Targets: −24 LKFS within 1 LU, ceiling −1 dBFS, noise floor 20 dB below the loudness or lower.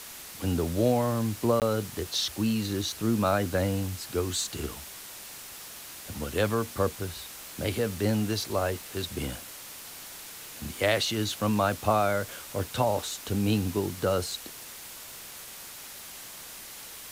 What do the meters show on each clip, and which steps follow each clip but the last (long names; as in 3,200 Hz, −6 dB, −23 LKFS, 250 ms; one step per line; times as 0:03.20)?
number of dropouts 1; longest dropout 18 ms; background noise floor −44 dBFS; target noise floor −49 dBFS; integrated loudness −29.0 LKFS; sample peak −9.0 dBFS; target loudness −24.0 LKFS
→ repair the gap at 0:01.60, 18 ms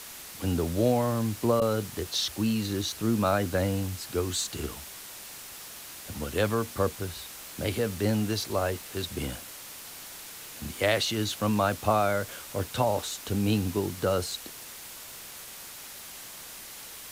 number of dropouts 0; background noise floor −44 dBFS; target noise floor −49 dBFS
→ broadband denoise 6 dB, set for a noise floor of −44 dBFS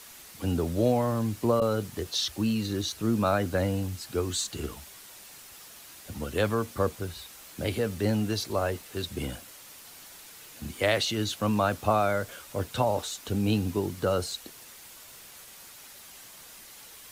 background noise floor −49 dBFS; integrated loudness −29.0 LKFS; sample peak −9.5 dBFS; target loudness −24.0 LKFS
→ level +5 dB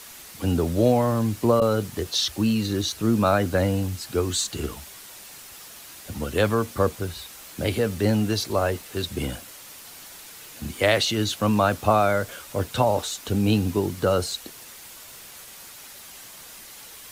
integrated loudness −24.0 LKFS; sample peak −4.5 dBFS; background noise floor −44 dBFS